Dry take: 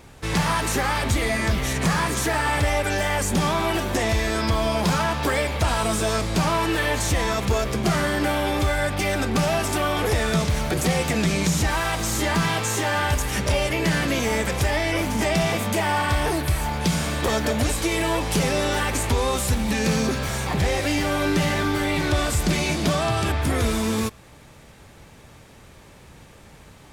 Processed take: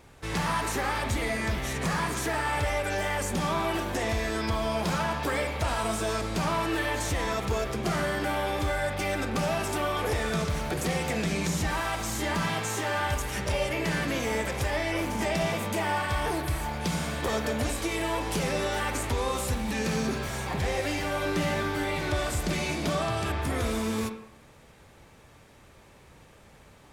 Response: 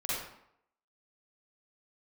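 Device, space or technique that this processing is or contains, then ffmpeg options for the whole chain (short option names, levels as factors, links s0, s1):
filtered reverb send: -filter_complex "[0:a]asplit=2[s0][s1];[s1]highpass=f=170:w=0.5412,highpass=f=170:w=1.3066,lowpass=3100[s2];[1:a]atrim=start_sample=2205[s3];[s2][s3]afir=irnorm=-1:irlink=0,volume=0.299[s4];[s0][s4]amix=inputs=2:normalize=0,volume=0.422"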